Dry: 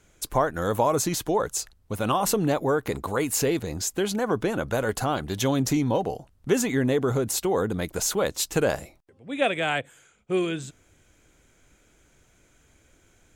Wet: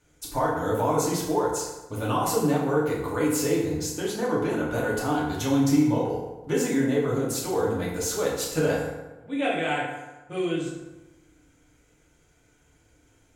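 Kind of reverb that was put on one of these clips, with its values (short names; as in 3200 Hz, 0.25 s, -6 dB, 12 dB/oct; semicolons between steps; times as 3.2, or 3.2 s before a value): FDN reverb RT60 1.1 s, low-frequency decay 1×, high-frequency decay 0.6×, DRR -6 dB; gain -8.5 dB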